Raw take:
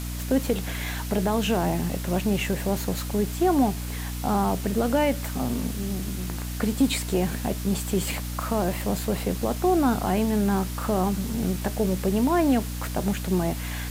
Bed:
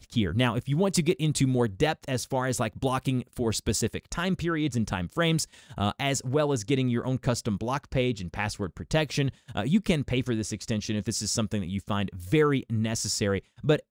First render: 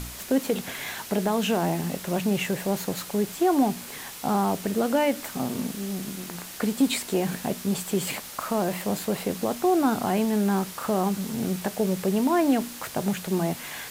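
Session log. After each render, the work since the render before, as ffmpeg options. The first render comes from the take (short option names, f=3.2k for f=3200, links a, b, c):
-af "bandreject=f=60:t=h:w=4,bandreject=f=120:t=h:w=4,bandreject=f=180:t=h:w=4,bandreject=f=240:t=h:w=4,bandreject=f=300:t=h:w=4"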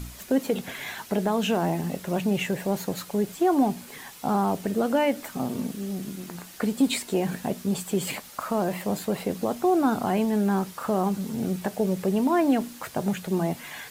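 -af "afftdn=nr=7:nf=-40"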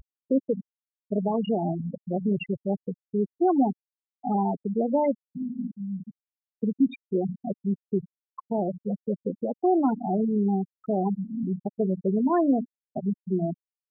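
-af "afftfilt=real='re*gte(hypot(re,im),0.224)':imag='im*gte(hypot(re,im),0.224)':win_size=1024:overlap=0.75"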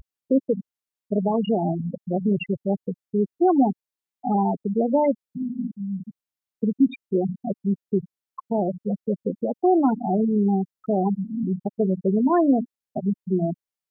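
-af "volume=3.5dB"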